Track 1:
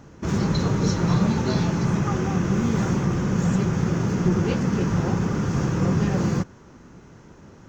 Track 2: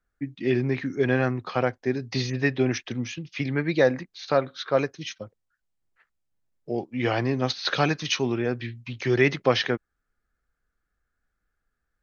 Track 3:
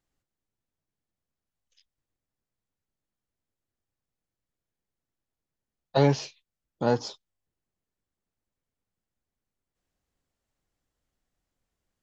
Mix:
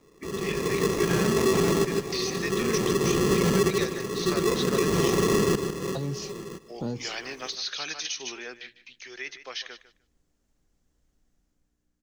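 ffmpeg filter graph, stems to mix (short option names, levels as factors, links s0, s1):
-filter_complex "[0:a]equalizer=f=410:w=2.8:g=13.5,acrusher=samples=29:mix=1:aa=0.000001,aeval=exprs='val(0)*pow(10,-20*if(lt(mod(-0.54*n/s,1),2*abs(-0.54)/1000),1-mod(-0.54*n/s,1)/(2*abs(-0.54)/1000),(mod(-0.54*n/s,1)-2*abs(-0.54)/1000)/(1-2*abs(-0.54)/1000))/20)':c=same,volume=1.33,asplit=2[s0][s1];[s1]volume=0.282[s2];[1:a]aeval=exprs='val(0)+0.00708*(sin(2*PI*60*n/s)+sin(2*PI*2*60*n/s)/2+sin(2*PI*3*60*n/s)/3+sin(2*PI*4*60*n/s)/4+sin(2*PI*5*60*n/s)/5)':c=same,highpass=f=890:p=1,tiltshelf=f=1200:g=-7,volume=0.708,afade=t=out:st=8.2:d=0.79:silence=0.298538,asplit=2[s3][s4];[s4]volume=0.178[s5];[2:a]lowshelf=f=220:g=12,dynaudnorm=f=160:g=9:m=2.51,volume=0.562,asplit=2[s6][s7];[s7]apad=whole_len=338937[s8];[s0][s8]sidechaincompress=threshold=0.0316:ratio=8:attack=8.3:release=1480[s9];[s3][s6]amix=inputs=2:normalize=0,acrossover=split=350|3000[s10][s11][s12];[s11]acompressor=threshold=0.0224:ratio=6[s13];[s10][s13][s12]amix=inputs=3:normalize=0,alimiter=limit=0.0668:level=0:latency=1:release=119,volume=1[s14];[s2][s5]amix=inputs=2:normalize=0,aecho=0:1:151|302|453:1|0.15|0.0225[s15];[s9][s14][s15]amix=inputs=3:normalize=0,equalizer=f=100:t=o:w=0.67:g=-8,equalizer=f=400:t=o:w=0.67:g=4,equalizer=f=6300:t=o:w=0.67:g=6,alimiter=limit=0.211:level=0:latency=1:release=84"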